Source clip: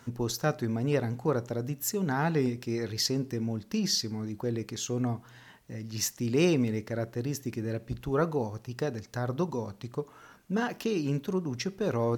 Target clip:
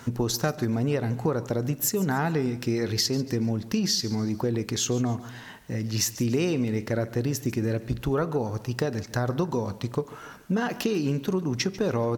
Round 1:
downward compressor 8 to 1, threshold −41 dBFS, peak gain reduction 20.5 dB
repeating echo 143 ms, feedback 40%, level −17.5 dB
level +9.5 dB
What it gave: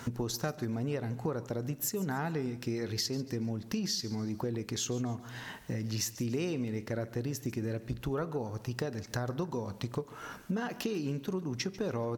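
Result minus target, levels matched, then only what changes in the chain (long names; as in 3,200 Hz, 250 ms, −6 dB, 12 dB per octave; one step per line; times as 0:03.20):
downward compressor: peak gain reduction +8.5 dB
change: downward compressor 8 to 1, threshold −31.5 dBFS, peak gain reduction 12 dB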